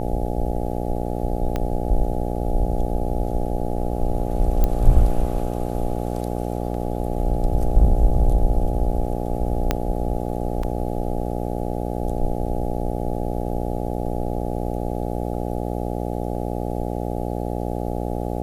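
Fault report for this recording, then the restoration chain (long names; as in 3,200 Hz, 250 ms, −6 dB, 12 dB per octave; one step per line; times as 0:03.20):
mains buzz 60 Hz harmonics 14 −26 dBFS
0:01.56: click −12 dBFS
0:04.64: click −8 dBFS
0:09.71: click −5 dBFS
0:10.63: drop-out 3.8 ms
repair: click removal
hum removal 60 Hz, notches 14
repair the gap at 0:10.63, 3.8 ms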